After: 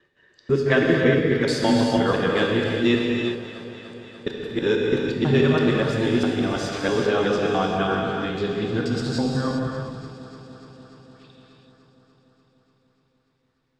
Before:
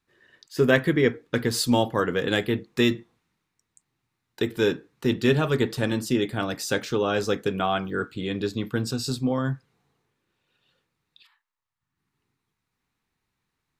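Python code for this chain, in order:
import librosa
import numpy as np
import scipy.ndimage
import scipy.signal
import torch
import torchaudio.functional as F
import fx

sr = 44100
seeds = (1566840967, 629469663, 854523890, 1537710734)

y = fx.local_reverse(x, sr, ms=164.0)
y = fx.air_absorb(y, sr, metres=90.0)
y = fx.echo_alternate(y, sr, ms=147, hz=920.0, feedback_pct=85, wet_db=-13.0)
y = fx.rev_gated(y, sr, seeds[0], gate_ms=430, shape='flat', drr_db=-1.0)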